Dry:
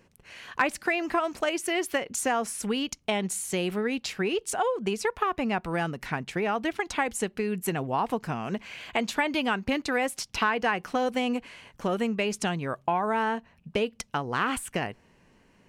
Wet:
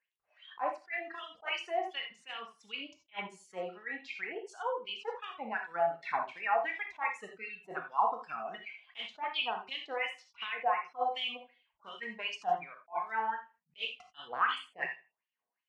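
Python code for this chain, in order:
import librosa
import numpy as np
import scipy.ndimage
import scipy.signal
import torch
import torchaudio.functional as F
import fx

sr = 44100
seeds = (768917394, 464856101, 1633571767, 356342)

y = fx.block_float(x, sr, bits=5)
y = fx.dereverb_blind(y, sr, rt60_s=1.8)
y = scipy.signal.sosfilt(scipy.signal.butter(2, 5700.0, 'lowpass', fs=sr, output='sos'), y)
y = fx.noise_reduce_blind(y, sr, reduce_db=15)
y = fx.rider(y, sr, range_db=3, speed_s=0.5)
y = fx.wah_lfo(y, sr, hz=2.7, low_hz=660.0, high_hz=3500.0, q=5.8)
y = fx.echo_feedback(y, sr, ms=79, feedback_pct=24, wet_db=-19.0)
y = fx.rev_gated(y, sr, seeds[0], gate_ms=110, shape='flat', drr_db=2.5)
y = fx.attack_slew(y, sr, db_per_s=390.0)
y = F.gain(torch.from_numpy(y), 4.5).numpy()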